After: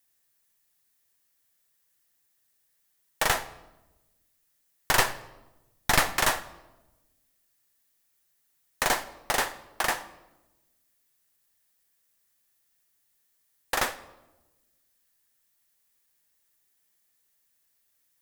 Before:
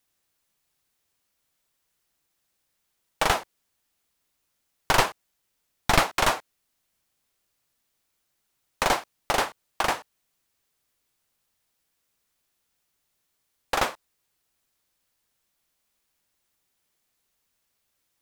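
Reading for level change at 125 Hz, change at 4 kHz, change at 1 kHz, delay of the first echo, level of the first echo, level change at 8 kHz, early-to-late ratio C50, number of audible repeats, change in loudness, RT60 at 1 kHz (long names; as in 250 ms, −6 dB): −4.0 dB, −1.5 dB, −3.5 dB, no echo audible, no echo audible, +2.5 dB, 15.0 dB, no echo audible, −1.5 dB, 0.90 s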